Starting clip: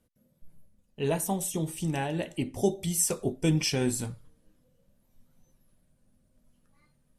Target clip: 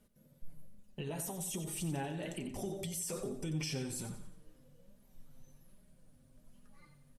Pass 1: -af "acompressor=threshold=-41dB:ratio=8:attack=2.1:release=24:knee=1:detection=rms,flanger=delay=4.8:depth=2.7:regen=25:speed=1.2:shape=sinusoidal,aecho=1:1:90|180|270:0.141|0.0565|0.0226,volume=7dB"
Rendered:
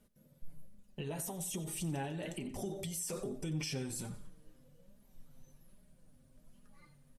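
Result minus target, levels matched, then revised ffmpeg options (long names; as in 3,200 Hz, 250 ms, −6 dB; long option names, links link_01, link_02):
echo-to-direct −6.5 dB
-af "acompressor=threshold=-41dB:ratio=8:attack=2.1:release=24:knee=1:detection=rms,flanger=delay=4.8:depth=2.7:regen=25:speed=1.2:shape=sinusoidal,aecho=1:1:90|180|270|360:0.299|0.119|0.0478|0.0191,volume=7dB"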